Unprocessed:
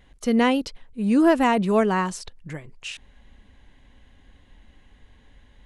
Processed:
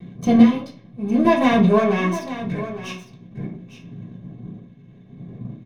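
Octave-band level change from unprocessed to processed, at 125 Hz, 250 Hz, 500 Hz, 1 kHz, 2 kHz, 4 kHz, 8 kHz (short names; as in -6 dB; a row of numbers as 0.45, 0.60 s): +8.0, +4.5, +2.5, +1.0, +1.0, 0.0, -3.0 dB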